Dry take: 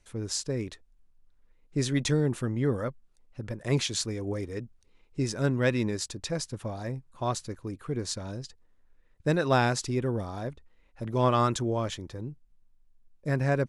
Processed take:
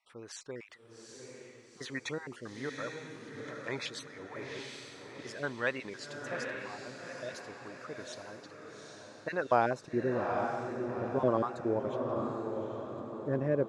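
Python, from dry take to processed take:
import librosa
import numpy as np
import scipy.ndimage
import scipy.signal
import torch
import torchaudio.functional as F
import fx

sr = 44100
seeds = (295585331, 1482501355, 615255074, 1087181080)

y = fx.spec_dropout(x, sr, seeds[0], share_pct=24)
y = fx.wow_flutter(y, sr, seeds[1], rate_hz=2.1, depth_cents=100.0)
y = fx.filter_sweep_bandpass(y, sr, from_hz=1400.0, to_hz=420.0, start_s=9.15, end_s=10.0, q=0.95)
y = fx.echo_diffused(y, sr, ms=817, feedback_pct=47, wet_db=-4)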